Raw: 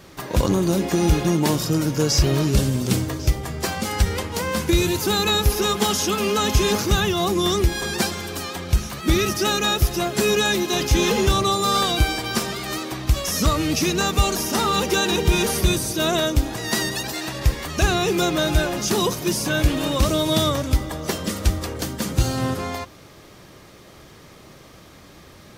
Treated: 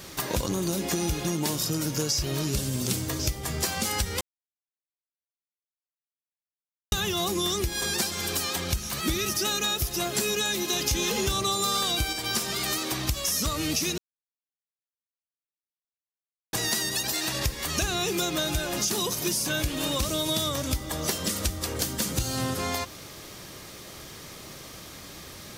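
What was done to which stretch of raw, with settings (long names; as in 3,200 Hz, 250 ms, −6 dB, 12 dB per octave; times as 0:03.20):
0:04.21–0:06.92: silence
0:10.87–0:12.13: clip gain +4.5 dB
0:13.98–0:16.53: silence
whole clip: high-shelf EQ 3,100 Hz +10.5 dB; downward compressor 6 to 1, threshold −25 dBFS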